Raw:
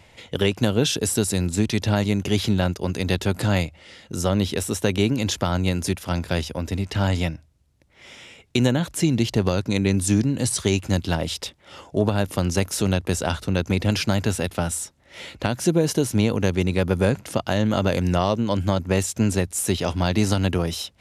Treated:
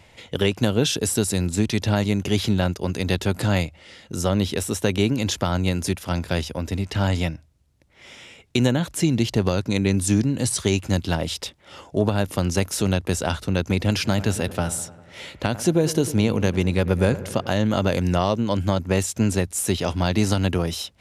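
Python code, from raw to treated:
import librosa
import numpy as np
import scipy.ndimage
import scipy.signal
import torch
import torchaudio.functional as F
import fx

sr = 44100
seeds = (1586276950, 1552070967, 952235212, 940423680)

y = fx.echo_wet_lowpass(x, sr, ms=100, feedback_pct=65, hz=1700.0, wet_db=-15.0, at=(14.03, 17.52), fade=0.02)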